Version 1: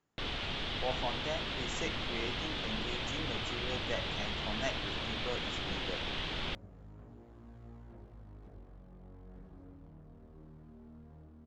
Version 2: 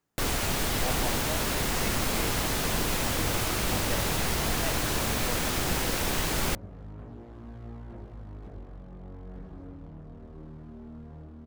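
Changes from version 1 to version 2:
first sound: remove transistor ladder low-pass 3,800 Hz, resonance 60%
second sound +9.5 dB

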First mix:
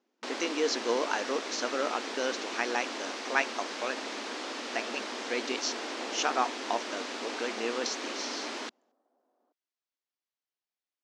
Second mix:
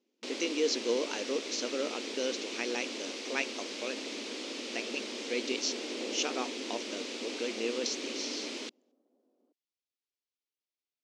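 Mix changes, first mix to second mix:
second sound: add low-shelf EQ 350 Hz +11.5 dB
master: add flat-topped bell 1,100 Hz −11 dB

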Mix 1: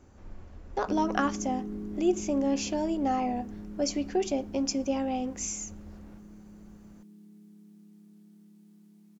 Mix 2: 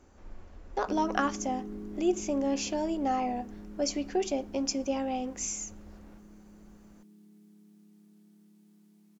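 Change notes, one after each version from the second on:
master: add parametric band 120 Hz −7.5 dB 1.8 octaves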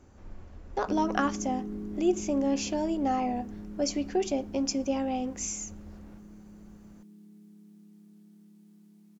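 master: add parametric band 120 Hz +7.5 dB 1.8 octaves

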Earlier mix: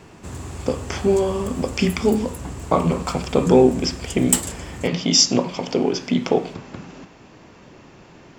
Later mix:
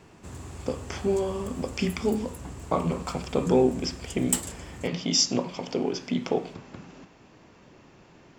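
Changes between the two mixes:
speech −7.5 dB
background −7.5 dB

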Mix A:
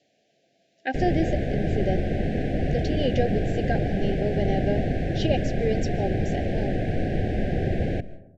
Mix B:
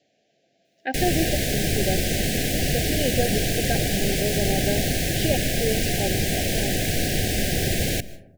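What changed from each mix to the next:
background: remove low-pass filter 1,200 Hz 12 dB per octave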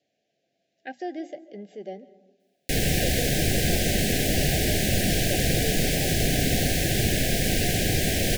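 speech −9.0 dB
background: entry +1.75 s

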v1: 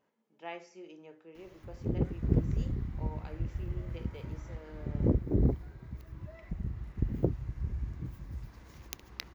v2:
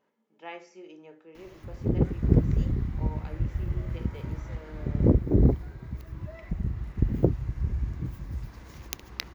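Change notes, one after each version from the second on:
speech: send +8.0 dB
background +6.5 dB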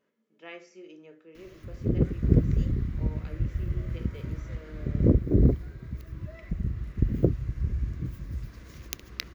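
master: add parametric band 850 Hz −14.5 dB 0.39 octaves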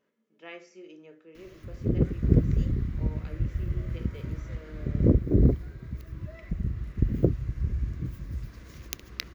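nothing changed

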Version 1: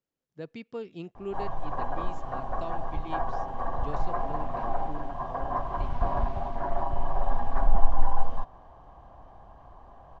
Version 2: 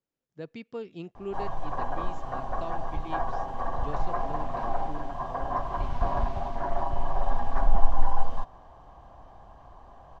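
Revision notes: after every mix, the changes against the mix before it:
background: add high-shelf EQ 3,700 Hz +9 dB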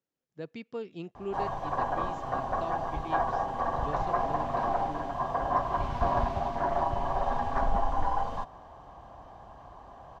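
background +3.0 dB
master: add high-pass filter 80 Hz 6 dB per octave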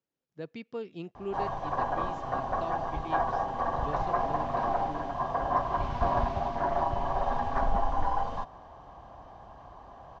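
master: add low-pass filter 6,900 Hz 24 dB per octave

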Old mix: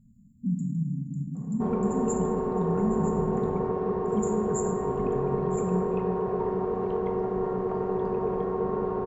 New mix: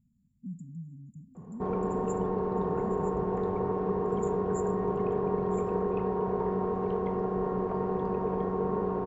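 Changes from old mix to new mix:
speech −9.0 dB
reverb: off

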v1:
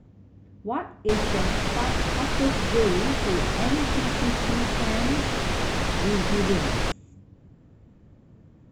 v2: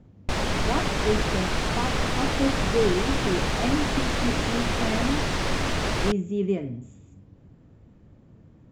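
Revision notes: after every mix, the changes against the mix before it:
background: entry −0.80 s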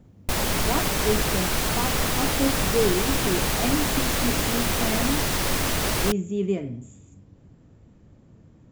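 master: remove high-frequency loss of the air 98 metres

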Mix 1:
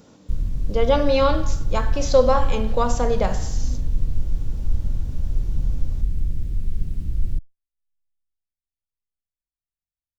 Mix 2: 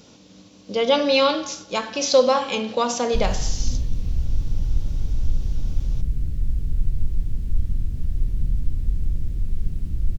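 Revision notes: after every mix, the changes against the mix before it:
speech: add flat-topped bell 3,800 Hz +8.5 dB
background: entry +2.85 s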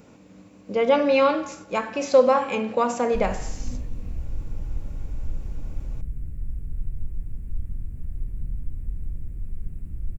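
background −8.0 dB
master: add flat-topped bell 4,400 Hz −14 dB 1.3 octaves

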